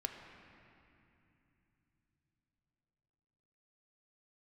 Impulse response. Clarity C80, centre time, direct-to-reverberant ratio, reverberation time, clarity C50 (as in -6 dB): 5.5 dB, 69 ms, 3.0 dB, 2.9 s, 4.5 dB